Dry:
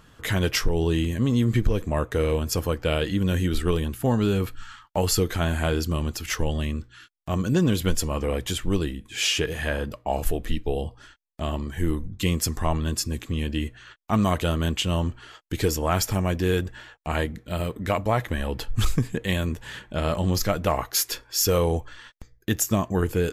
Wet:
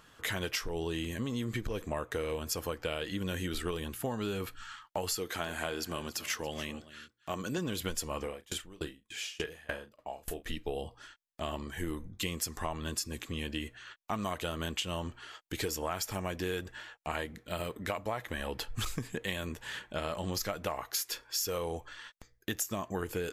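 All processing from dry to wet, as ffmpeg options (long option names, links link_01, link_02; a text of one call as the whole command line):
ffmpeg -i in.wav -filter_complex "[0:a]asettb=1/sr,asplit=3[link_01][link_02][link_03];[link_01]atrim=end=5.164[link_04];[link_02]atrim=start=5.16:end=7.58,asetpts=PTS-STARTPTS,afade=type=in:duration=0.004:curve=qsin,afade=type=out:start_time=2.416:duration=0.004:curve=qsin,highpass=frequency=180:poles=1,aecho=1:1:281:0.133,atrim=end_sample=106722[link_05];[link_03]atrim=start=7.576[link_06];[link_04][link_05]acrossfade=duration=0.004:curve1=hsin:curve2=qsin[link_07];[link_07][link_06]acrossfade=duration=0.004:curve1=qsin:curve2=hsin,asettb=1/sr,asplit=3[link_08][link_09][link_10];[link_08]atrim=end=8.224[link_11];[link_09]atrim=start=8.22:end=10.46,asetpts=PTS-STARTPTS,afade=type=in:duration=0.004:curve=qsin,afade=type=out:start_time=2.236:duration=0.004:curve=qsin,asplit=2[link_12][link_13];[link_13]adelay=37,volume=-9dB[link_14];[link_12][link_14]amix=inputs=2:normalize=0,atrim=end_sample=98784,aeval=exprs='val(0)*pow(10,-28*if(lt(mod(3.4*n/s,1),2*abs(3.4)/1000),1-mod(3.4*n/s,1)/(2*abs(3.4)/1000),(mod(3.4*n/s,1)-2*abs(3.4)/1000)/(1-2*abs(3.4)/1000))/20)':channel_layout=same[link_15];[link_10]atrim=start=10.456[link_16];[link_11][link_15]acrossfade=duration=0.004:curve1=hsin:curve2=qsin[link_17];[link_17][link_16]acrossfade=duration=0.004:curve1=qsin:curve2=hsin,lowshelf=frequency=290:gain=-11.5,acompressor=threshold=-29dB:ratio=6,volume=-2dB" out.wav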